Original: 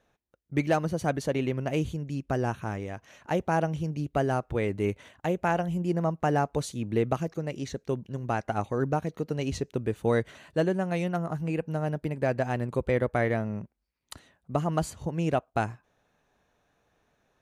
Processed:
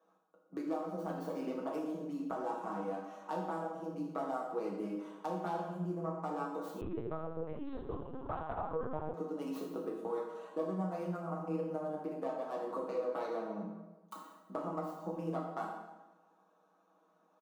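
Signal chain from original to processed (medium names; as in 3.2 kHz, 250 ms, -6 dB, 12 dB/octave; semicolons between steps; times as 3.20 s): tracing distortion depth 0.44 ms; Chebyshev high-pass 170 Hz, order 8; resonant high shelf 1.5 kHz -7.5 dB, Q 3; comb 6.3 ms, depth 85%; compression 8:1, threshold -32 dBFS, peak gain reduction 17.5 dB; plate-style reverb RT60 1.1 s, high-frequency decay 0.8×, DRR -2.5 dB; 6.81–9.14 s: LPC vocoder at 8 kHz pitch kept; trim -6.5 dB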